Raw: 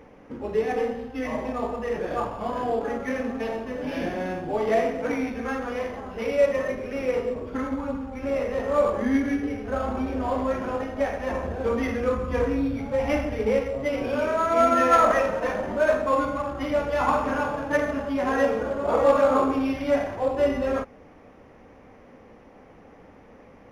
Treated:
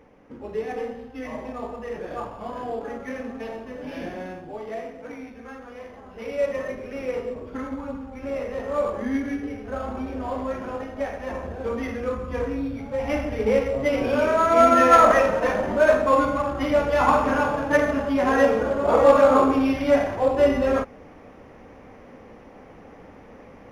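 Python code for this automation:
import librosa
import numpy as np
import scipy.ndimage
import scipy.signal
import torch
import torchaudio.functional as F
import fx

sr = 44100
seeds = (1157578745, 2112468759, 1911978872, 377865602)

y = fx.gain(x, sr, db=fx.line((4.19, -4.5), (4.7, -11.0), (5.75, -11.0), (6.53, -3.0), (12.9, -3.0), (13.72, 4.0)))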